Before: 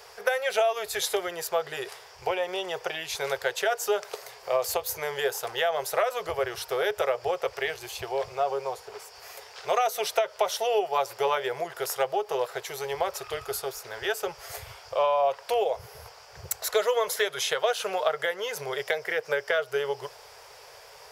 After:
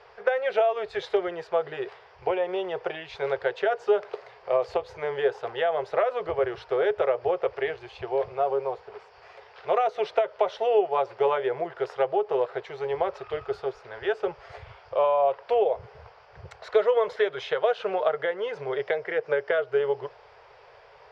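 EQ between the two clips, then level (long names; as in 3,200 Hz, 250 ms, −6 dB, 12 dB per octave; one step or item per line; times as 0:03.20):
low-pass filter 8,200 Hz 24 dB per octave
dynamic equaliser 310 Hz, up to +7 dB, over −40 dBFS, Q 0.79
high-frequency loss of the air 360 metres
0.0 dB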